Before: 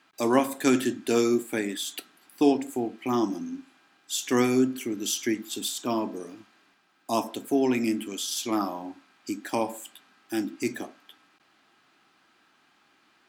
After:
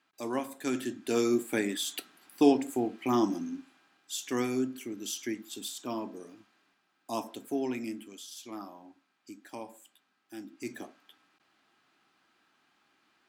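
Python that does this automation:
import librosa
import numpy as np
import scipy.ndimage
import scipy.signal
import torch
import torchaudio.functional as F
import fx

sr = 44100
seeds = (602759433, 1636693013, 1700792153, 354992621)

y = fx.gain(x, sr, db=fx.line((0.61, -11.0), (1.52, -1.0), (3.36, -1.0), (4.35, -8.0), (7.56, -8.0), (8.31, -15.0), (10.41, -15.0), (10.83, -6.5)))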